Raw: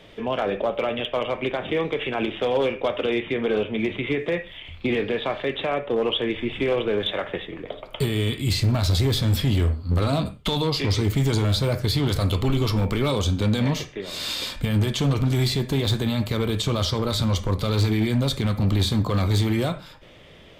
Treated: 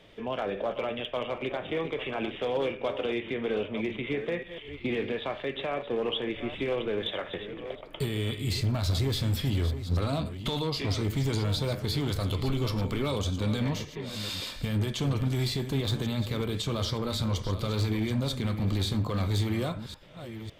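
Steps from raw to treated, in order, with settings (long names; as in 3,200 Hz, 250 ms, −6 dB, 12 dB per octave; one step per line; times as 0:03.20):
delay that plays each chunk backwards 554 ms, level −11 dB
level −7 dB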